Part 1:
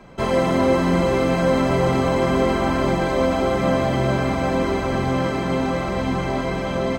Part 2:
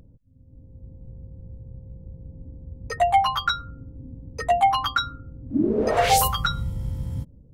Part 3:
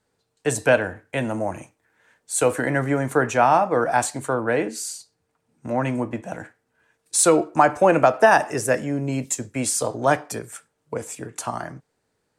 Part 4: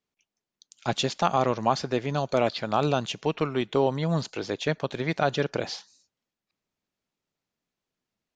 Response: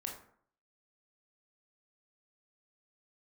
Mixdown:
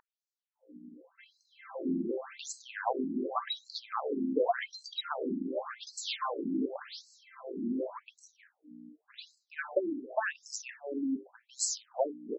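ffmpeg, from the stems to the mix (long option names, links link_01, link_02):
-filter_complex "[0:a]lowpass=1200,equalizer=frequency=790:width=0.77:gain=-14,adelay=1000,volume=-4.5dB[link_01];[1:a]volume=2dB[link_02];[2:a]bandreject=frequency=50:width_type=h:width=6,bandreject=frequency=100:width_type=h:width=6,bandreject=frequency=150:width_type=h:width=6,bandreject=frequency=200:width_type=h:width=6,bandreject=frequency=250:width_type=h:width=6,bandreject=frequency=300:width_type=h:width=6,bandreject=frequency=350:width_type=h:width=6,bandreject=frequency=400:width_type=h:width=6,adelay=1950,volume=-2dB[link_03];[3:a]adelay=1200,volume=-2dB[link_04];[link_02][link_03][link_04]amix=inputs=3:normalize=0,aeval=exprs='val(0)+0.0141*(sin(2*PI*60*n/s)+sin(2*PI*2*60*n/s)/2+sin(2*PI*3*60*n/s)/3+sin(2*PI*4*60*n/s)/4+sin(2*PI*5*60*n/s)/5)':channel_layout=same,acompressor=threshold=-24dB:ratio=4,volume=0dB[link_05];[link_01][link_05]amix=inputs=2:normalize=0,afftfilt=real='re*between(b*sr/1024,250*pow(5800/250,0.5+0.5*sin(2*PI*0.88*pts/sr))/1.41,250*pow(5800/250,0.5+0.5*sin(2*PI*0.88*pts/sr))*1.41)':imag='im*between(b*sr/1024,250*pow(5800/250,0.5+0.5*sin(2*PI*0.88*pts/sr))/1.41,250*pow(5800/250,0.5+0.5*sin(2*PI*0.88*pts/sr))*1.41)':win_size=1024:overlap=0.75"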